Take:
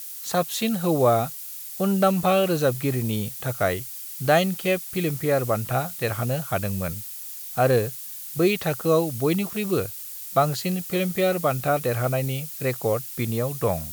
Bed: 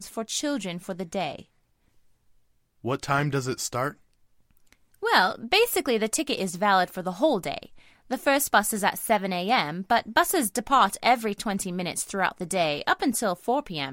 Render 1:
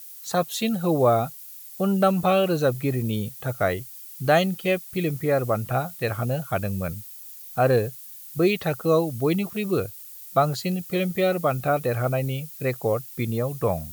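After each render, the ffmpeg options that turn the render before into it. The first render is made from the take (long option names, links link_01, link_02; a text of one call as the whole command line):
ffmpeg -i in.wav -af "afftdn=noise_reduction=8:noise_floor=-37" out.wav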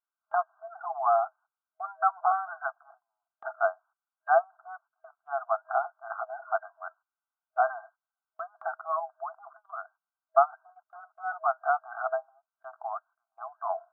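ffmpeg -i in.wav -af "afftfilt=real='re*between(b*sr/4096,640,1600)':imag='im*between(b*sr/4096,640,1600)':win_size=4096:overlap=0.75,agate=range=-21dB:threshold=-54dB:ratio=16:detection=peak" out.wav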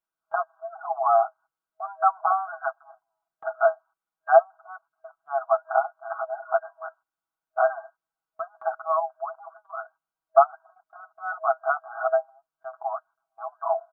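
ffmpeg -i in.wav -af "tiltshelf=frequency=1300:gain=4.5,aecho=1:1:6.2:0.98" out.wav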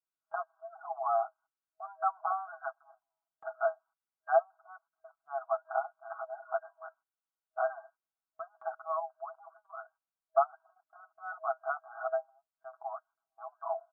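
ffmpeg -i in.wav -af "volume=-10dB" out.wav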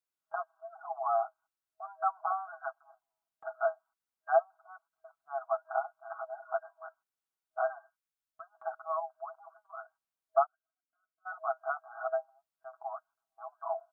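ffmpeg -i in.wav -filter_complex "[0:a]asplit=3[link_01][link_02][link_03];[link_01]afade=type=out:start_time=7.77:duration=0.02[link_04];[link_02]equalizer=frequency=560:width_type=o:width=1.8:gain=-11,afade=type=in:start_time=7.77:duration=0.02,afade=type=out:start_time=8.51:duration=0.02[link_05];[link_03]afade=type=in:start_time=8.51:duration=0.02[link_06];[link_04][link_05][link_06]amix=inputs=3:normalize=0,asplit=3[link_07][link_08][link_09];[link_07]afade=type=out:start_time=10.45:duration=0.02[link_10];[link_08]asplit=3[link_11][link_12][link_13];[link_11]bandpass=frequency=270:width_type=q:width=8,volume=0dB[link_14];[link_12]bandpass=frequency=2290:width_type=q:width=8,volume=-6dB[link_15];[link_13]bandpass=frequency=3010:width_type=q:width=8,volume=-9dB[link_16];[link_14][link_15][link_16]amix=inputs=3:normalize=0,afade=type=in:start_time=10.45:duration=0.02,afade=type=out:start_time=11.25:duration=0.02[link_17];[link_09]afade=type=in:start_time=11.25:duration=0.02[link_18];[link_10][link_17][link_18]amix=inputs=3:normalize=0" out.wav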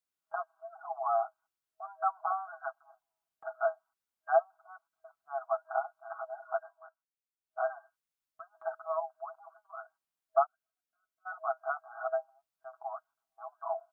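ffmpeg -i in.wav -filter_complex "[0:a]asettb=1/sr,asplit=3[link_01][link_02][link_03];[link_01]atrim=end=8.534[link_04];[link_02]atrim=start=8.53:end=9.04,asetpts=PTS-STARTPTS,afade=type=in:duration=0.004:curve=qsin,afade=type=out:start_time=0.506:duration=0.004:curve=qsin,aecho=1:1:3.2:0.43,atrim=end_sample=22491[link_05];[link_03]atrim=start=9.036[link_06];[link_04][link_05]acrossfade=duration=0.004:curve1=hsin:curve2=qsin[link_07];[link_07][link_06]acrossfade=duration=0.004:curve1=qsin:curve2=hsin,asplit=3[link_08][link_09][link_10];[link_08]atrim=end=6.95,asetpts=PTS-STARTPTS,afade=type=out:start_time=6.63:duration=0.32:silence=0.199526[link_11];[link_09]atrim=start=6.95:end=7.36,asetpts=PTS-STARTPTS,volume=-14dB[link_12];[link_10]atrim=start=7.36,asetpts=PTS-STARTPTS,afade=type=in:duration=0.32:silence=0.199526[link_13];[link_11][link_12][link_13]concat=n=3:v=0:a=1" out.wav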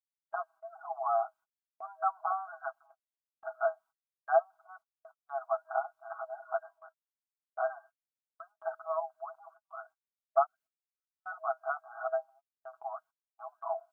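ffmpeg -i in.wav -af "agate=range=-29dB:threshold=-56dB:ratio=16:detection=peak" out.wav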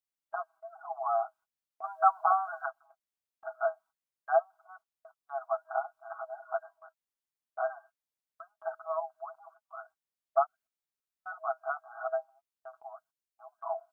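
ffmpeg -i in.wav -filter_complex "[0:a]asettb=1/sr,asplit=3[link_01][link_02][link_03];[link_01]atrim=end=12.804[link_04];[link_02]atrim=start=12.8:end=13.59,asetpts=PTS-STARTPTS,afade=type=in:duration=0.004:curve=qsin,afade=type=out:start_time=0.786:duration=0.004:curve=qsin,equalizer=frequency=1100:width=0.84:gain=-9.5[link_05];[link_03]atrim=start=13.586[link_06];[link_04][link_05]acrossfade=duration=0.004:curve1=hsin:curve2=qsin[link_07];[link_07][link_06]acrossfade=duration=0.004:curve1=qsin:curve2=hsin,asplit=3[link_08][link_09][link_10];[link_08]atrim=end=1.842[link_11];[link_09]atrim=start=1.838:end=2.662,asetpts=PTS-STARTPTS,volume=7dB[link_12];[link_10]atrim=start=2.658[link_13];[link_11][link_12]acrossfade=duration=0.004:curve1=hsin:curve2=hsin[link_14];[link_14][link_13]acrossfade=duration=0.004:curve1=hsin:curve2=hsin" out.wav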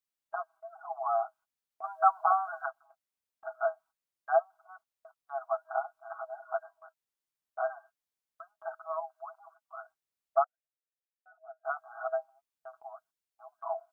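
ffmpeg -i in.wav -filter_complex "[0:a]asplit=3[link_01][link_02][link_03];[link_01]afade=type=out:start_time=8.66:duration=0.02[link_04];[link_02]highpass=650,afade=type=in:start_time=8.66:duration=0.02,afade=type=out:start_time=9.6:duration=0.02[link_05];[link_03]afade=type=in:start_time=9.6:duration=0.02[link_06];[link_04][link_05][link_06]amix=inputs=3:normalize=0,asettb=1/sr,asplit=3[link_07][link_08][link_09];[link_07]atrim=end=10.444[link_10];[link_08]atrim=start=10.44:end=11.65,asetpts=PTS-STARTPTS,afade=type=in:duration=0.004:curve=qsin,afade=type=out:start_time=1.206:duration=0.004:curve=qsin,asplit=3[link_11][link_12][link_13];[link_11]bandpass=frequency=530:width_type=q:width=8,volume=0dB[link_14];[link_12]bandpass=frequency=1840:width_type=q:width=8,volume=-6dB[link_15];[link_13]bandpass=frequency=2480:width_type=q:width=8,volume=-9dB[link_16];[link_14][link_15][link_16]amix=inputs=3:normalize=0[link_17];[link_09]atrim=start=11.646[link_18];[link_10][link_17]acrossfade=duration=0.004:curve1=hsin:curve2=qsin[link_19];[link_19][link_18]acrossfade=duration=0.004:curve1=qsin:curve2=hsin" out.wav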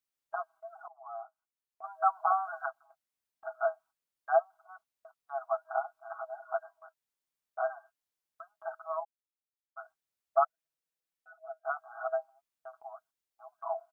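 ffmpeg -i in.wav -filter_complex "[0:a]asplit=3[link_01][link_02][link_03];[link_01]afade=type=out:start_time=9.03:duration=0.02[link_04];[link_02]acrusher=bits=2:mix=0:aa=0.5,afade=type=in:start_time=9.03:duration=0.02,afade=type=out:start_time=9.76:duration=0.02[link_05];[link_03]afade=type=in:start_time=9.76:duration=0.02[link_06];[link_04][link_05][link_06]amix=inputs=3:normalize=0,asplit=3[link_07][link_08][link_09];[link_07]afade=type=out:start_time=10.41:duration=0.02[link_10];[link_08]aecho=1:1:6.1:0.95,afade=type=in:start_time=10.41:duration=0.02,afade=type=out:start_time=11.59:duration=0.02[link_11];[link_09]afade=type=in:start_time=11.59:duration=0.02[link_12];[link_10][link_11][link_12]amix=inputs=3:normalize=0,asplit=2[link_13][link_14];[link_13]atrim=end=0.88,asetpts=PTS-STARTPTS,afade=type=out:start_time=0.876:duration=0.004:curve=hsin:silence=0.0841395[link_15];[link_14]atrim=start=0.88,asetpts=PTS-STARTPTS,afade=type=in:duration=1.81:silence=0.0841395[link_16];[link_15][link_16]concat=n=2:v=0:a=1" out.wav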